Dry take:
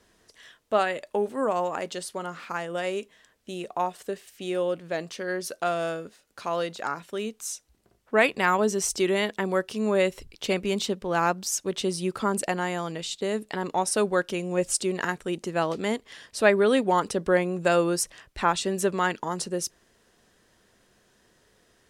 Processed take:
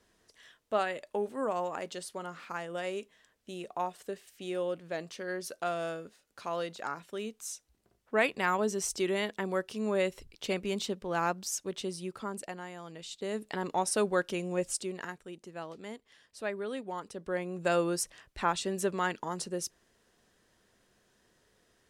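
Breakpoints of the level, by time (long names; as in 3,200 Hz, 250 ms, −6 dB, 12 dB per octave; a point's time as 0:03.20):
0:11.50 −6.5 dB
0:12.75 −15.5 dB
0:13.50 −4.5 dB
0:14.46 −4.5 dB
0:15.35 −16 dB
0:17.09 −16 dB
0:17.71 −6 dB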